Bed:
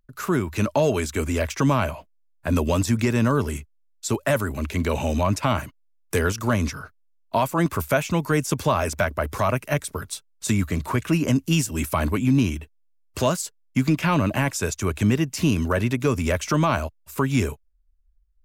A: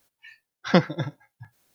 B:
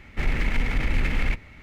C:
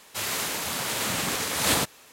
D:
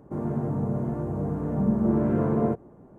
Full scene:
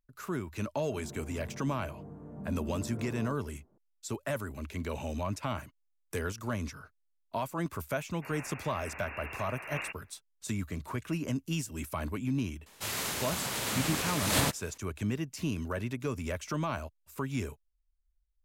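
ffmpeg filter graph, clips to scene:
-filter_complex "[3:a]asplit=2[s0][s1];[0:a]volume=0.237[s2];[s0]lowpass=f=2500:t=q:w=0.5098,lowpass=f=2500:t=q:w=0.6013,lowpass=f=2500:t=q:w=0.9,lowpass=f=2500:t=q:w=2.563,afreqshift=-2900[s3];[s1]lowshelf=f=160:g=8.5[s4];[4:a]atrim=end=2.98,asetpts=PTS-STARTPTS,volume=0.126,afade=t=in:d=0.004:c=hsin,afade=t=out:st=2.976:d=0.004:c=hsin,adelay=800[s5];[s3]atrim=end=2.12,asetpts=PTS-STARTPTS,volume=0.237,afade=t=in:d=0.004:c=hsin,afade=t=out:st=2.116:d=0.004:c=hsin,adelay=8070[s6];[s4]atrim=end=2.12,asetpts=PTS-STARTPTS,volume=0.531,afade=t=in:d=0.004:c=hsin,afade=t=out:st=2.116:d=0.004:c=hsin,adelay=12660[s7];[s2][s5][s6][s7]amix=inputs=4:normalize=0"

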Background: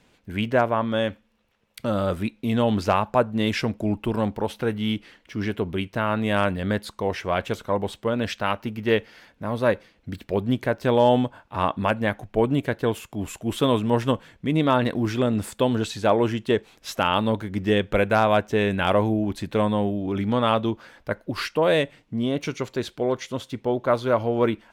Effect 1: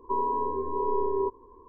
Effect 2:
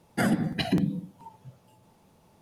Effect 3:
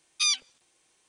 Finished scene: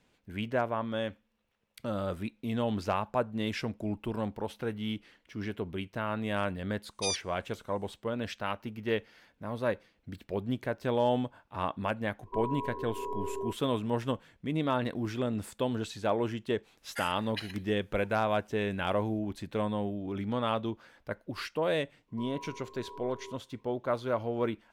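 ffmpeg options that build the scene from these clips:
-filter_complex "[1:a]asplit=2[s0][s1];[0:a]volume=0.335[s2];[3:a]highshelf=f=7600:g=10.5[s3];[2:a]highpass=f=1200:w=0.5412,highpass=f=1200:w=1.3066[s4];[s1]tiltshelf=f=1400:g=-5[s5];[s3]atrim=end=1.08,asetpts=PTS-STARTPTS,volume=0.266,afade=t=in:d=0.004:c=hsin,afade=t=out:st=1.076:d=0.004:c=hsin,adelay=300762S[s6];[s0]atrim=end=1.68,asetpts=PTS-STARTPTS,volume=0.355,afade=t=in:d=0.004:c=hsin,afade=t=out:st=1.676:d=0.004:c=hsin,adelay=12230[s7];[s4]atrim=end=2.41,asetpts=PTS-STARTPTS,volume=0.473,afade=t=in:d=0.004:c=hsin,afade=t=out:st=2.406:d=0.004:c=hsin,adelay=16780[s8];[s5]atrim=end=1.68,asetpts=PTS-STARTPTS,volume=0.158,afade=t=in:d=0.004:c=hsin,afade=t=out:st=1.676:d=0.004:c=hsin,adelay=22080[s9];[s2][s6][s7][s8][s9]amix=inputs=5:normalize=0"

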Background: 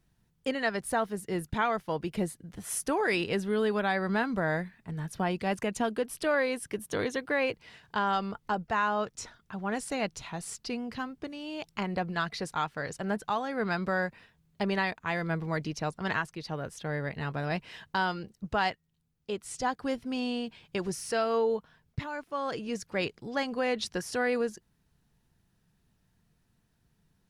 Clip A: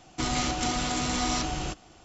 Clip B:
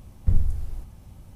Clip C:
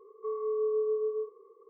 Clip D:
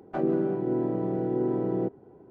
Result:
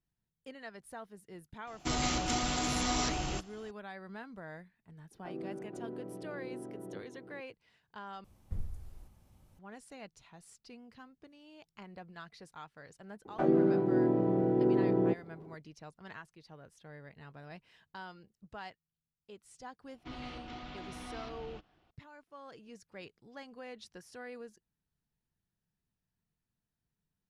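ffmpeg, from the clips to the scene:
-filter_complex "[1:a]asplit=2[s0][s1];[4:a]asplit=2[s2][s3];[0:a]volume=0.133[s4];[s2]aecho=1:1:482:0.355[s5];[2:a]lowshelf=f=200:g=-6.5[s6];[s1]lowpass=f=3800:w=0.5412,lowpass=f=3800:w=1.3066[s7];[s4]asplit=2[s8][s9];[s8]atrim=end=8.244[s10];[s6]atrim=end=1.35,asetpts=PTS-STARTPTS,volume=0.251[s11];[s9]atrim=start=9.586[s12];[s0]atrim=end=2.04,asetpts=PTS-STARTPTS,volume=0.631,afade=t=in:d=0.004:c=hsin,afade=t=out:st=2.036:d=0.004:c=hsin,adelay=1670[s13];[s5]atrim=end=2.3,asetpts=PTS-STARTPTS,volume=0.15,afade=t=in:d=0.004:c=hsin,afade=t=out:st=2.296:d=0.004:c=hsin,adelay=5110[s14];[s3]atrim=end=2.3,asetpts=PTS-STARTPTS,volume=0.944,afade=t=in:d=0.004:c=hsin,afade=t=out:st=2.296:d=0.004:c=hsin,adelay=13250[s15];[s7]atrim=end=2.04,asetpts=PTS-STARTPTS,volume=0.15,afade=t=in:d=0.004:c=hsin,afade=t=out:st=2.036:d=0.004:c=hsin,adelay=19870[s16];[s10][s11]acrossfade=d=0.004:c1=hsin:c2=hsin[s17];[s17][s12]acrossfade=d=0.004:c1=hsin:c2=hsin[s18];[s18][s13][s14][s15][s16]amix=inputs=5:normalize=0"

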